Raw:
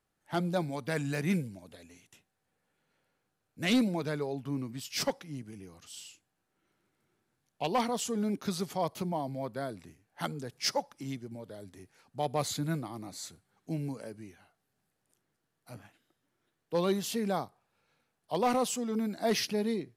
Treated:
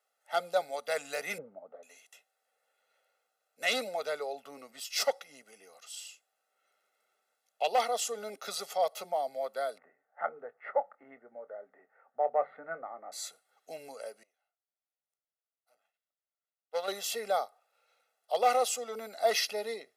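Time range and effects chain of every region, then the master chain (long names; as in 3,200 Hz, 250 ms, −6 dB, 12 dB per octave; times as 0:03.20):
0:01.38–0:01.83: one scale factor per block 5 bits + Chebyshev low-pass filter 1,200 Hz, order 3 + low-shelf EQ 420 Hz +9 dB
0:09.78–0:13.12: elliptic low-pass filter 1,800 Hz, stop band 70 dB + mains-hum notches 50/100/150/200 Hz + double-tracking delay 25 ms −13.5 dB
0:14.23–0:16.88: gain on one half-wave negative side −12 dB + expander for the loud parts 2.5 to 1, over −42 dBFS
whole clip: high-pass filter 400 Hz 24 dB per octave; comb filter 1.5 ms, depth 84%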